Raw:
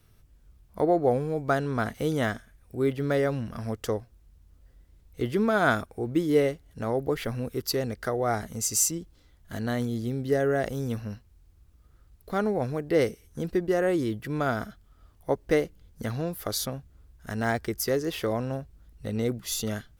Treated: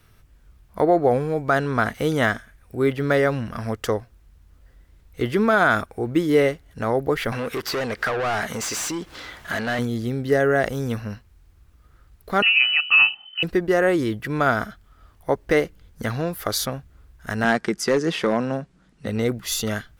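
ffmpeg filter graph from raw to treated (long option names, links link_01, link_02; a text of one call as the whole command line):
ffmpeg -i in.wav -filter_complex "[0:a]asettb=1/sr,asplit=3[link_01][link_02][link_03];[link_01]atrim=end=7.324[link_04];[link_02]atrim=start=7.32:end=9.79,asetpts=PTS-STARTPTS,afade=type=in:duration=0.004:curve=qsin,afade=type=out:start_time=2.466:duration=0.004:curve=qsin,asplit=2[link_05][link_06];[link_06]highpass=frequency=720:poles=1,volume=30dB,asoftclip=type=tanh:threshold=-11dB[link_07];[link_05][link_07]amix=inputs=2:normalize=0,lowpass=frequency=3700:poles=1,volume=-6dB,acompressor=threshold=-40dB:ratio=2:attack=3.2:release=140:knee=1:detection=peak[link_08];[link_03]atrim=start=9.786[link_09];[link_04][link_08]acrossfade=duration=0.004:curve1=hsin:curve2=qsin[link_10];[link_10][link_09]acrossfade=duration=0.004:curve1=qsin:curve2=hsin,asettb=1/sr,asplit=3[link_11][link_12][link_13];[link_11]atrim=end=12.424[link_14];[link_12]atrim=start=12.42:end=13.43,asetpts=PTS-STARTPTS,afade=type=in:duration=0.004:curve=qsin,afade=type=out:start_time=1.006:duration=0.004:curve=qsin,aecho=1:1:1.7:0.72,atrim=end_sample=44541,lowpass=frequency=2600:width_type=q:width=0.5098,lowpass=frequency=2600:width_type=q:width=0.6013,lowpass=frequency=2600:width_type=q:width=0.9,lowpass=frequency=2600:width_type=q:width=2.563,afreqshift=-3100[link_15];[link_13]atrim=start=13.426[link_16];[link_14][link_15]acrossfade=duration=0.004:curve1=hsin:curve2=qsin[link_17];[link_17][link_16]acrossfade=duration=0.004:curve1=qsin:curve2=hsin,asettb=1/sr,asplit=3[link_18][link_19][link_20];[link_18]atrim=end=17.444[link_21];[link_19]atrim=start=17.44:end=19.07,asetpts=PTS-STARTPTS,afade=type=in:duration=0.004:curve=qsin,afade=type=out:start_time=1.626:duration=0.004:curve=qsin,lowpass=frequency=9100:width=0.5412,lowpass=frequency=9100:width=1.3066,lowshelf=frequency=120:width_type=q:width=3:gain=-13,asoftclip=type=hard:threshold=-18.5dB[link_22];[link_20]atrim=start=19.066[link_23];[link_21][link_22]acrossfade=duration=0.004:curve1=hsin:curve2=qsin[link_24];[link_24][link_23]acrossfade=duration=0.004:curve1=qsin:curve2=hsin,equalizer=frequency=1600:width=0.61:gain=6.5,alimiter=level_in=10.5dB:limit=-1dB:release=50:level=0:latency=1,volume=-6.5dB" out.wav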